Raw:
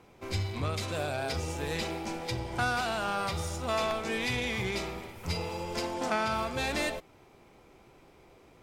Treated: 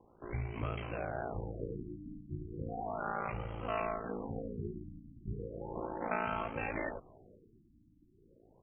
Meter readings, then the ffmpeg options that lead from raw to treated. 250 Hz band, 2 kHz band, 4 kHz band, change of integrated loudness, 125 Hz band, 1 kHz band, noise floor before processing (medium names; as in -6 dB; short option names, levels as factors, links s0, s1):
-5.5 dB, -10.0 dB, -22.5 dB, -7.5 dB, -6.0 dB, -6.5 dB, -58 dBFS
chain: -filter_complex "[0:a]aeval=exprs='val(0)*sin(2*PI*28*n/s)':c=same,asplit=4[s0][s1][s2][s3];[s1]adelay=485,afreqshift=-130,volume=0.0708[s4];[s2]adelay=970,afreqshift=-260,volume=0.0355[s5];[s3]adelay=1455,afreqshift=-390,volume=0.0178[s6];[s0][s4][s5][s6]amix=inputs=4:normalize=0,afftfilt=real='re*lt(b*sr/1024,320*pow(3300/320,0.5+0.5*sin(2*PI*0.35*pts/sr)))':imag='im*lt(b*sr/1024,320*pow(3300/320,0.5+0.5*sin(2*PI*0.35*pts/sr)))':win_size=1024:overlap=0.75,volume=0.75"